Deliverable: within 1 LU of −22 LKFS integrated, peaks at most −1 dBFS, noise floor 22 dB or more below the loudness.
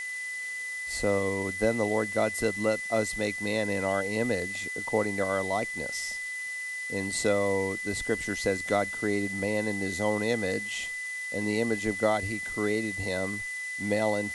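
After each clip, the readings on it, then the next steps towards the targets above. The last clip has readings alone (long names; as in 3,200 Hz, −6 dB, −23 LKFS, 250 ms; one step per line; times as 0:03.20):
interfering tone 2,000 Hz; level of the tone −33 dBFS; background noise floor −36 dBFS; target noise floor −51 dBFS; integrated loudness −29.0 LKFS; sample peak −12.0 dBFS; target loudness −22.0 LKFS
→ notch filter 2,000 Hz, Q 30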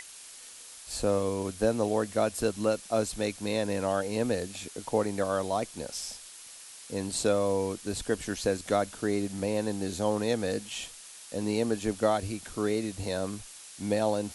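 interfering tone none found; background noise floor −48 dBFS; target noise floor −53 dBFS
→ noise reduction from a noise print 6 dB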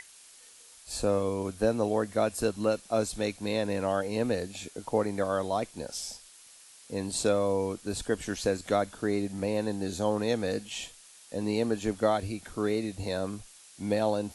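background noise floor −54 dBFS; integrated loudness −30.5 LKFS; sample peak −12.5 dBFS; target loudness −22.0 LKFS
→ level +8.5 dB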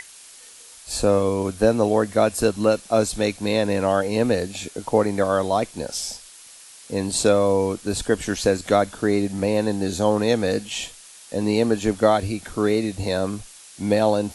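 integrated loudness −22.0 LKFS; sample peak −4.0 dBFS; background noise floor −45 dBFS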